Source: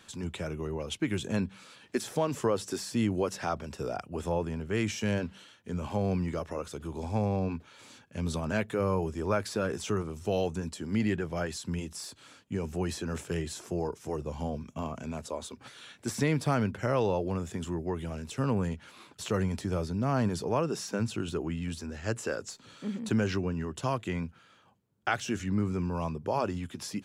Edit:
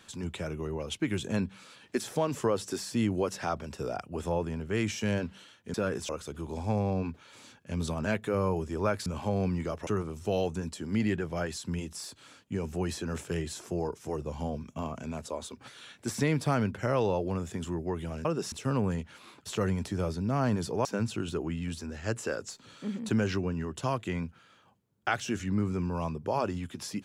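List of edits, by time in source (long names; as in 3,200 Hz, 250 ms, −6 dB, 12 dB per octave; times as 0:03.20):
0:05.74–0:06.55: swap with 0:09.52–0:09.87
0:20.58–0:20.85: move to 0:18.25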